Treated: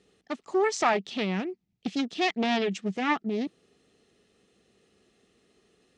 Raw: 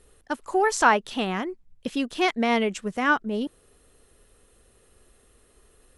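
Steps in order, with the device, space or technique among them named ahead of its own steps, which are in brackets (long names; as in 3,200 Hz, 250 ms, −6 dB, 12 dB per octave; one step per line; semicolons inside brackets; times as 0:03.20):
full-range speaker at full volume (highs frequency-modulated by the lows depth 0.59 ms; loudspeaker in its box 160–6,500 Hz, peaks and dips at 190 Hz +7 dB, 550 Hz −7 dB, 1,000 Hz −10 dB, 1,500 Hz −8 dB)
level −1 dB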